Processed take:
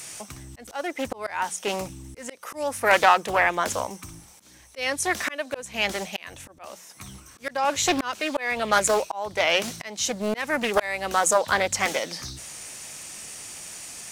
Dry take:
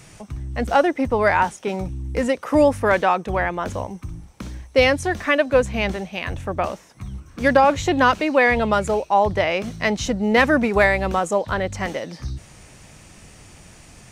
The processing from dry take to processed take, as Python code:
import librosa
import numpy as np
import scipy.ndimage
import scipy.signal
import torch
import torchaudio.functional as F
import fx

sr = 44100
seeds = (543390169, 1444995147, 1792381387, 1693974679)

y = fx.riaa(x, sr, side='recording')
y = fx.hum_notches(y, sr, base_hz=60, count=3)
y = fx.auto_swell(y, sr, attack_ms=484.0)
y = fx.doppler_dist(y, sr, depth_ms=0.42)
y = y * librosa.db_to_amplitude(2.0)